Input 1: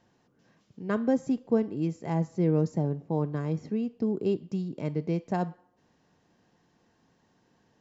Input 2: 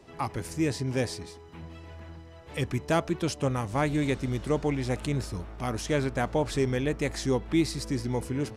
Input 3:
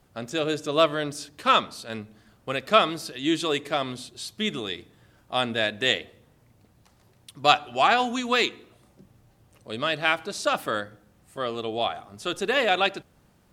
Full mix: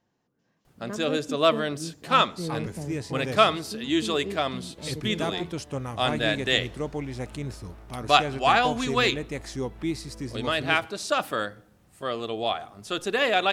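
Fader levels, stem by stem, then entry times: -8.0, -4.5, -0.5 dB; 0.00, 2.30, 0.65 s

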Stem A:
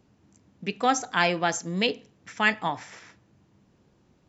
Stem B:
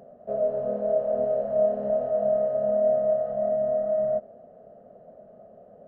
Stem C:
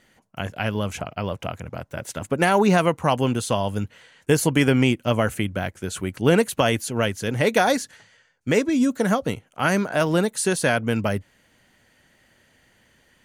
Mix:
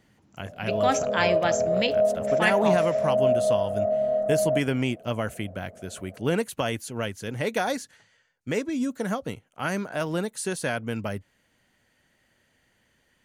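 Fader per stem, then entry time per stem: -1.5, +0.5, -7.5 dB; 0.00, 0.40, 0.00 s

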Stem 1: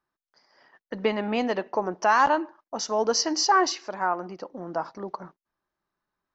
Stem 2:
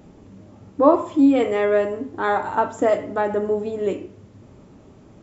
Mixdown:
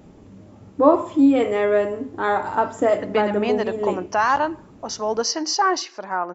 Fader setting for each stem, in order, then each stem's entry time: +1.0, 0.0 dB; 2.10, 0.00 s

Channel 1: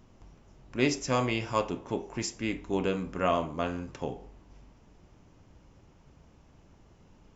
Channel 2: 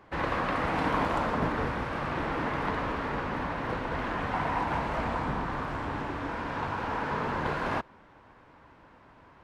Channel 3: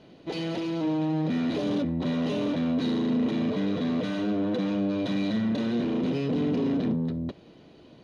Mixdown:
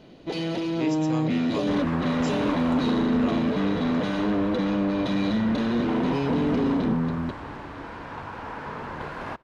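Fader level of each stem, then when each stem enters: -8.5, -4.0, +2.5 dB; 0.00, 1.55, 0.00 s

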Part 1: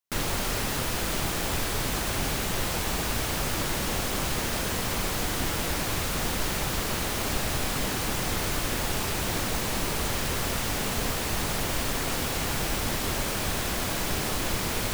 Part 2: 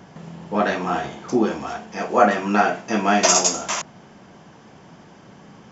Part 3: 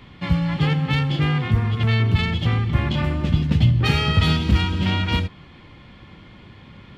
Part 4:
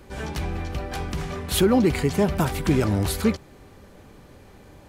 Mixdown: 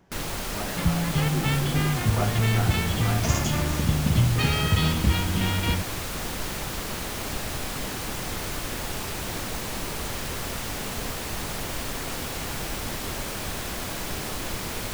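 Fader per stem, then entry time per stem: -3.0, -16.0, -4.5, -18.5 dB; 0.00, 0.00, 0.55, 0.00 s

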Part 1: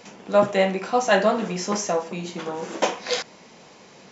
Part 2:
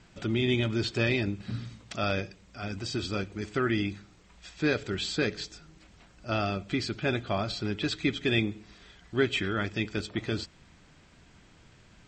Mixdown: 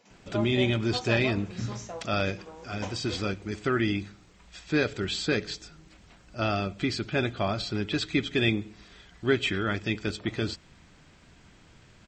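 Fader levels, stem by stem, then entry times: -16.0, +1.5 dB; 0.00, 0.10 s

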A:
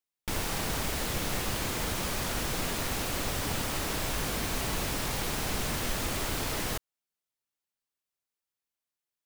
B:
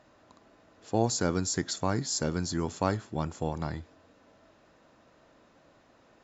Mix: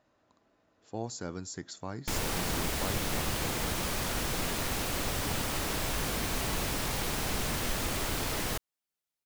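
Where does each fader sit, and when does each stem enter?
-0.5, -10.5 dB; 1.80, 0.00 s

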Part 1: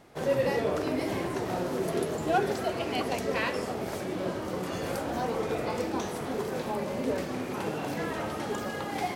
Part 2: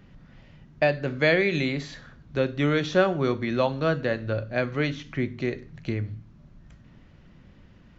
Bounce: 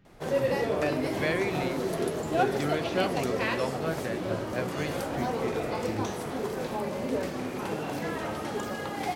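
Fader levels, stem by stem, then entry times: 0.0, -8.5 dB; 0.05, 0.00 s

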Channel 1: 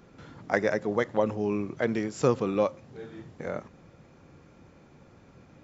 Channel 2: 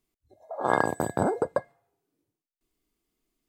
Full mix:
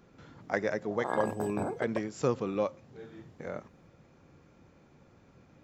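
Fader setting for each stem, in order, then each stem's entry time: -5.0, -9.5 dB; 0.00, 0.40 s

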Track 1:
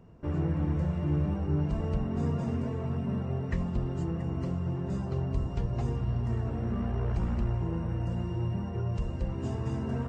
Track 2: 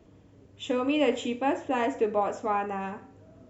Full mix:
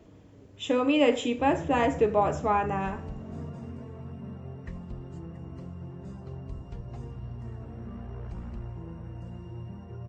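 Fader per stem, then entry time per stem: -9.0, +2.5 dB; 1.15, 0.00 s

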